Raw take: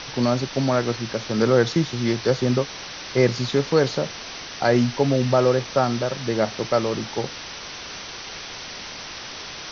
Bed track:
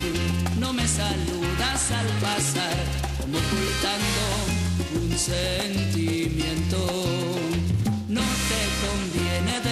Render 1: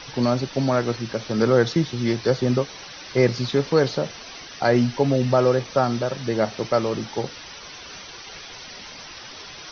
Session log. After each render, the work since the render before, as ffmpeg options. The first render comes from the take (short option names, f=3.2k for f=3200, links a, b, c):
-af "afftdn=nr=9:nf=-36"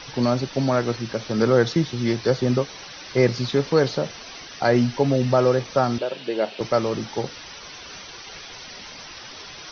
-filter_complex "[0:a]asettb=1/sr,asplit=3[a][b][c];[a]atrim=end=5.984[d];[b]atrim=start=5.98:end=6.61,asetpts=PTS-STARTPTS,afade=t=in:d=0.004:c=qsin,afade=t=out:st=0.626:d=0.004:c=qsin,highpass=f=210:w=0.5412,highpass=f=210:w=1.3066,equalizer=f=240:t=q:w=4:g=-9,equalizer=f=800:t=q:w=4:g=-3,equalizer=f=1.2k:t=q:w=4:g=-8,equalizer=f=1.9k:t=q:w=4:g=-5,equalizer=f=2.8k:t=q:w=4:g=6,lowpass=f=4.5k:w=0.5412,lowpass=f=4.5k:w=1.3066[e];[c]atrim=start=6.606[f];[d][e]acrossfade=d=0.004:c1=hsin:c2=qsin[g];[g][f]acrossfade=d=0.004:c1=qsin:c2=hsin"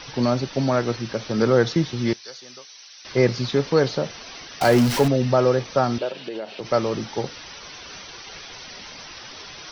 -filter_complex "[0:a]asettb=1/sr,asplit=3[a][b][c];[a]atrim=end=2.134[d];[b]atrim=start=2.13:end=3.05,asetpts=PTS-STARTPTS,afade=t=in:d=0.004:c=qsin,afade=t=out:st=0.916:d=0.004:c=qsin,aderivative[e];[c]atrim=start=3.046[f];[d][e]acrossfade=d=0.004:c1=hsin:c2=qsin[g];[g][f]acrossfade=d=0.004:c1=qsin:c2=hsin,asettb=1/sr,asplit=3[h][i][j];[h]atrim=end=4.614[k];[i]atrim=start=4.61:end=5.08,asetpts=PTS-STARTPTS,afade=t=in:d=0.004:c=qsin,afade=t=out:st=0.466:d=0.004:c=qsin,aeval=exprs='val(0)+0.5*0.0891*sgn(val(0))':c=same[l];[j]atrim=start=5.076[m];[k][l]acrossfade=d=0.004:c1=hsin:c2=qsin[n];[n][m]acrossfade=d=0.004:c1=qsin:c2=hsin,asettb=1/sr,asplit=3[o][p][q];[o]atrim=end=6.104[r];[p]atrim=start=6.1:end=6.71,asetpts=PTS-STARTPTS,afade=t=in:d=0.004:c=qsin,afade=t=out:st=0.606:d=0.004:c=qsin,acompressor=threshold=-26dB:ratio=12:attack=3.2:release=140:knee=1:detection=peak[s];[q]atrim=start=6.706[t];[r][s]acrossfade=d=0.004:c1=hsin:c2=qsin[u];[u][t]acrossfade=d=0.004:c1=qsin:c2=hsin"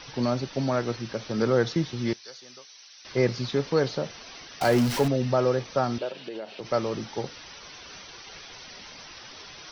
-af "volume=-5dB"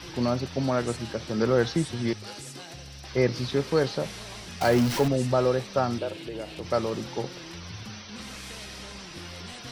-filter_complex "[1:a]volume=-18dB[a];[0:a][a]amix=inputs=2:normalize=0"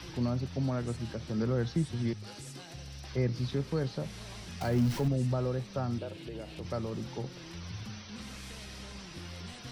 -filter_complex "[0:a]acrossover=split=220[a][b];[b]acompressor=threshold=-56dB:ratio=1.5[c];[a][c]amix=inputs=2:normalize=0"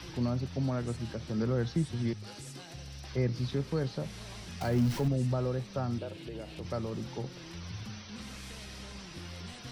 -af anull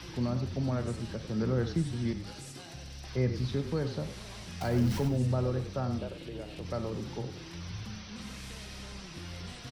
-filter_complex "[0:a]asplit=2[a][b];[b]adelay=47,volume=-13.5dB[c];[a][c]amix=inputs=2:normalize=0,asplit=4[d][e][f][g];[e]adelay=96,afreqshift=-34,volume=-10dB[h];[f]adelay=192,afreqshift=-68,volume=-20.2dB[i];[g]adelay=288,afreqshift=-102,volume=-30.3dB[j];[d][h][i][j]amix=inputs=4:normalize=0"